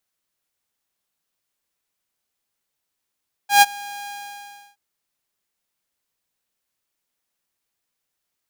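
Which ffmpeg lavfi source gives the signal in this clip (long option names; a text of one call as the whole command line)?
ffmpeg -f lavfi -i "aevalsrc='0.596*(2*mod(813*t,1)-1)':duration=1.271:sample_rate=44100,afade=type=in:duration=0.127,afade=type=out:start_time=0.127:duration=0.033:silence=0.0631,afade=type=out:start_time=0.58:duration=0.691" out.wav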